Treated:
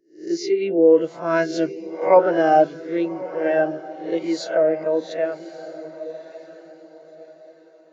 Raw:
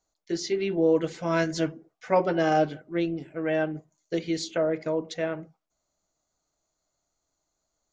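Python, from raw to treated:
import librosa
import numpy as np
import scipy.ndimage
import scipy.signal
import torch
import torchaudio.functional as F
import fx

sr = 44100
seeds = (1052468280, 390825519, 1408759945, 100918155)

y = fx.spec_swells(x, sr, rise_s=0.57)
y = fx.highpass(y, sr, hz=310.0, slope=6)
y = fx.echo_diffused(y, sr, ms=1164, feedback_pct=50, wet_db=-9.0)
y = fx.spectral_expand(y, sr, expansion=1.5)
y = F.gain(torch.from_numpy(y), 8.0).numpy()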